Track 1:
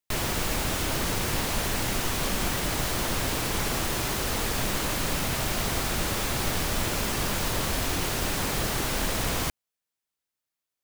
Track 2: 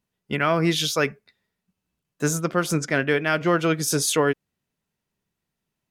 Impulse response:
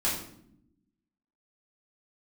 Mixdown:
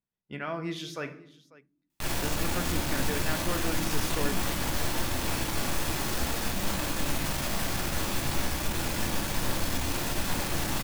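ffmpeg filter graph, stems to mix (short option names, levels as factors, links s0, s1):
-filter_complex "[0:a]alimiter=level_in=1.06:limit=0.0631:level=0:latency=1,volume=0.944,aeval=exprs='(tanh(50.1*val(0)+0.5)-tanh(0.5))/50.1':c=same,adelay=1900,volume=1.26,asplit=2[s0][s1];[s1]volume=0.473[s2];[1:a]highshelf=f=5000:g=-8,volume=0.188,asplit=3[s3][s4][s5];[s4]volume=0.178[s6];[s5]volume=0.106[s7];[2:a]atrim=start_sample=2205[s8];[s2][s6]amix=inputs=2:normalize=0[s9];[s9][s8]afir=irnorm=-1:irlink=0[s10];[s7]aecho=0:1:544:1[s11];[s0][s3][s10][s11]amix=inputs=4:normalize=0"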